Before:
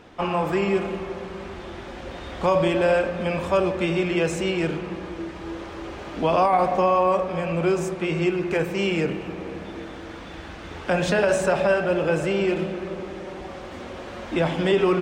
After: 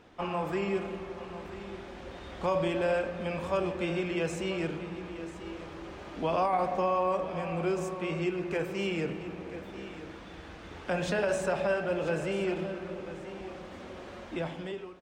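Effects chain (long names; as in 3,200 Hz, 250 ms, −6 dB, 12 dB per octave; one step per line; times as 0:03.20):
fade-out on the ending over 0.89 s
single-tap delay 987 ms −14 dB
level −8.5 dB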